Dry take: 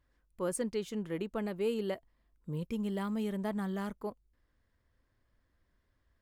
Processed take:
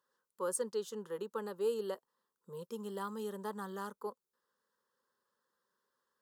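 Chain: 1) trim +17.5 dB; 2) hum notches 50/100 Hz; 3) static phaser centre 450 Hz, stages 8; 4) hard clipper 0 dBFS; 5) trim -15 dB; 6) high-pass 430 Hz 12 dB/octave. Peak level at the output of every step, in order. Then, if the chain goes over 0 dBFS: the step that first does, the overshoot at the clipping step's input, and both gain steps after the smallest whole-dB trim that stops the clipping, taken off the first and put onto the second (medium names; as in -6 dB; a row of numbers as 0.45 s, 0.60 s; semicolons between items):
-4.5 dBFS, -4.5 dBFS, -6.0 dBFS, -6.0 dBFS, -21.0 dBFS, -22.5 dBFS; nothing clips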